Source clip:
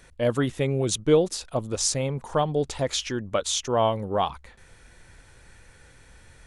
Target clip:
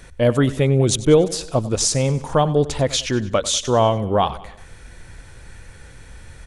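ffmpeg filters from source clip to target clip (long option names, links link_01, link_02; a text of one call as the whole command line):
ffmpeg -i in.wav -filter_complex "[0:a]lowshelf=frequency=200:gain=5.5,asplit=2[link_01][link_02];[link_02]alimiter=limit=-16dB:level=0:latency=1:release=429,volume=-1dB[link_03];[link_01][link_03]amix=inputs=2:normalize=0,aecho=1:1:96|192|288|384:0.141|0.0692|0.0339|0.0166,volume=1.5dB" out.wav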